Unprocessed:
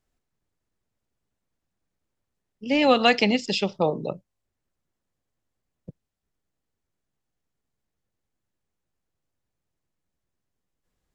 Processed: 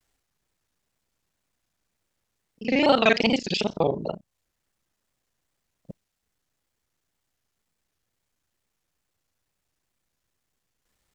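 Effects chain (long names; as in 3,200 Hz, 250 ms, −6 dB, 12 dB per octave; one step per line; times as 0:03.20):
reversed piece by piece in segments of 34 ms
tape wow and flutter 150 cents
one half of a high-frequency compander encoder only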